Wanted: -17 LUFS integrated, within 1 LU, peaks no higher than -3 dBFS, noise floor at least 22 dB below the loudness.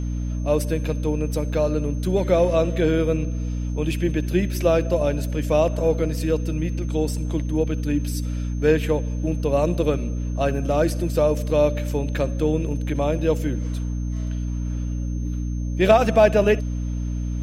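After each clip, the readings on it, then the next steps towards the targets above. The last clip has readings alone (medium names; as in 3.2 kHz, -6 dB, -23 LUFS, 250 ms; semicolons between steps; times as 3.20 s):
hum 60 Hz; highest harmonic 300 Hz; hum level -23 dBFS; steady tone 6.3 kHz; tone level -50 dBFS; loudness -22.5 LUFS; peak level -4.0 dBFS; loudness target -17.0 LUFS
-> hum notches 60/120/180/240/300 Hz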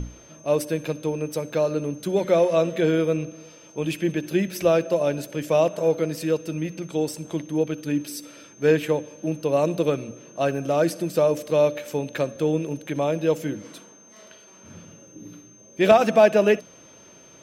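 hum not found; steady tone 6.3 kHz; tone level -50 dBFS
-> band-stop 6.3 kHz, Q 30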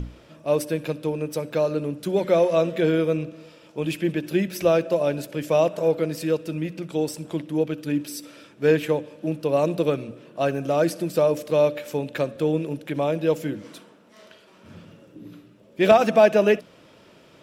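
steady tone not found; loudness -23.5 LUFS; peak level -5.0 dBFS; loudness target -17.0 LUFS
-> trim +6.5 dB; peak limiter -3 dBFS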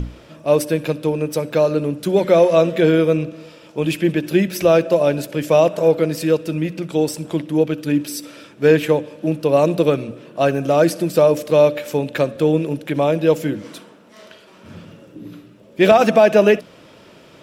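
loudness -17.5 LUFS; peak level -3.0 dBFS; noise floor -46 dBFS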